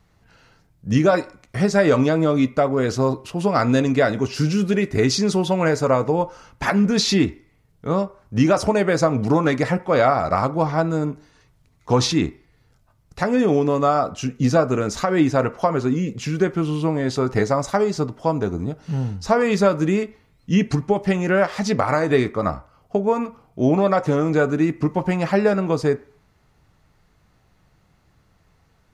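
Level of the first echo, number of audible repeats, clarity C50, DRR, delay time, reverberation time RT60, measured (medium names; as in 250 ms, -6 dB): no echo, no echo, 19.0 dB, 12.0 dB, no echo, 0.50 s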